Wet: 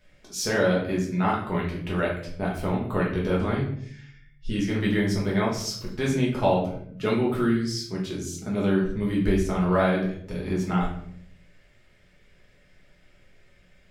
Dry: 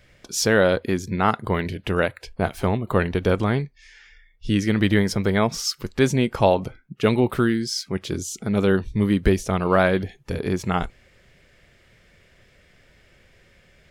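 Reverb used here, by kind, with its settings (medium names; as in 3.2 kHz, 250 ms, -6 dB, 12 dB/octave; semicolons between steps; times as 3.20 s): simulated room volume 100 m³, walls mixed, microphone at 1.4 m; trim -10.5 dB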